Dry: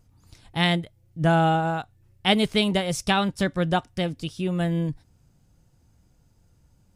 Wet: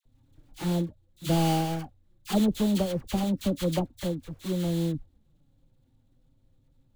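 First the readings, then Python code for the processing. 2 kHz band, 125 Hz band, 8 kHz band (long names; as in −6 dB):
−15.5 dB, −3.0 dB, −1.5 dB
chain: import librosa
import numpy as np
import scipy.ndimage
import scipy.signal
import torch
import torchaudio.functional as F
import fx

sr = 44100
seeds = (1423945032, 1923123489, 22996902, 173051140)

y = scipy.ndimage.median_filter(x, 41, mode='constant')
y = y + 0.43 * np.pad(y, (int(3.6 * sr / 1000.0), 0))[:len(y)]
y = fx.env_flanger(y, sr, rest_ms=8.2, full_db=-22.5)
y = fx.sample_hold(y, sr, seeds[0], rate_hz=3800.0, jitter_pct=20)
y = fx.dispersion(y, sr, late='lows', ms=56.0, hz=1200.0)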